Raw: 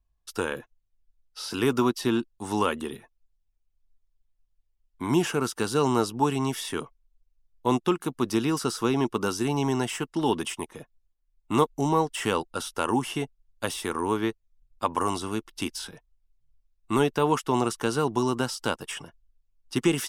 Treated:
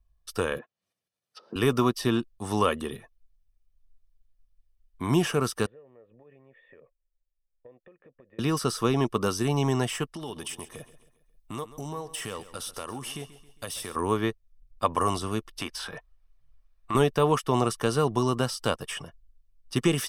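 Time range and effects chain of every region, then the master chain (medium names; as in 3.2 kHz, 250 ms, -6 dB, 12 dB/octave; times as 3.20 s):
0.58–1.56 s: low-pass that closes with the level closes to 510 Hz, closed at -37.5 dBFS + upward compressor, threshold -53 dBFS + high-pass 180 Hz 24 dB/octave
5.66–8.39 s: compression 16:1, threshold -36 dBFS + cascade formant filter e
10.14–13.96 s: compression 2.5:1, threshold -39 dBFS + treble shelf 4.4 kHz +8 dB + feedback delay 135 ms, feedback 46%, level -15.5 dB
15.61–16.95 s: peaking EQ 1.2 kHz +13.5 dB 2.9 oct + compression 2:1, threshold -36 dBFS
whole clip: bass shelf 260 Hz +4 dB; band-stop 7 kHz, Q 8.4; comb 1.7 ms, depth 37%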